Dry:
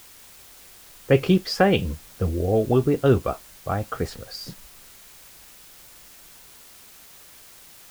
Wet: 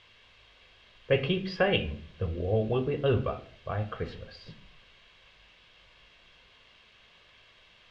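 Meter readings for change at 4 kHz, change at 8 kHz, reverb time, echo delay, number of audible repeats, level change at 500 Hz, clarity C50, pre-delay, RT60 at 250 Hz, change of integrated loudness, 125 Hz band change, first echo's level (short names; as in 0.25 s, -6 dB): -3.5 dB, under -25 dB, 0.55 s, none, none, -7.0 dB, 13.0 dB, 19 ms, 0.70 s, -7.0 dB, -7.0 dB, none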